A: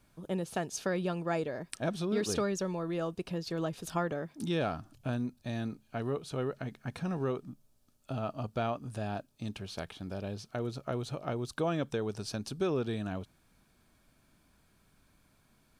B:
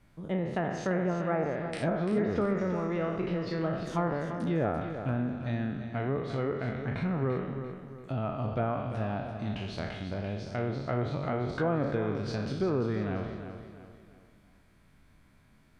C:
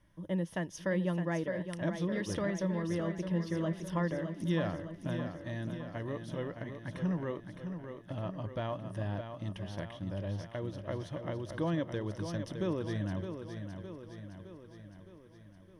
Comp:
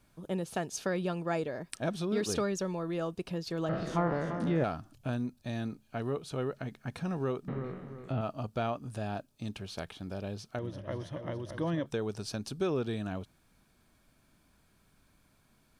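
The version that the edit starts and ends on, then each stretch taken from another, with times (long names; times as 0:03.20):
A
0:03.69–0:04.64: punch in from B
0:07.48–0:08.21: punch in from B
0:10.59–0:11.86: punch in from C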